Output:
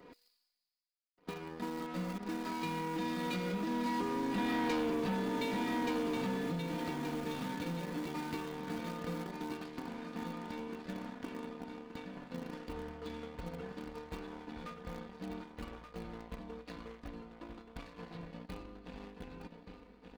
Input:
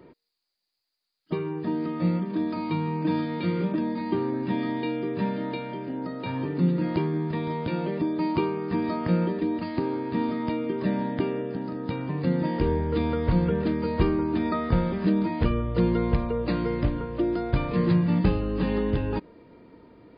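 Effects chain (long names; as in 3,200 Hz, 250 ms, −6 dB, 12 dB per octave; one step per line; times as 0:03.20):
source passing by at 0:04.75, 10 m/s, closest 2 metres
leveller curve on the samples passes 2
reversed playback
upward compression, threshold −46 dBFS
reversed playback
high-shelf EQ 3,800 Hz +4.5 dB
repeating echo 1,177 ms, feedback 24%, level −8 dB
in parallel at −3 dB: centre clipping without the shift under −40.5 dBFS
on the sum: downward compressor 5 to 1, threshold −40 dBFS, peak gain reduction 19 dB
leveller curve on the samples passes 2
low-shelf EQ 470 Hz −4.5 dB
comb filter 4.1 ms, depth 57%
level +2 dB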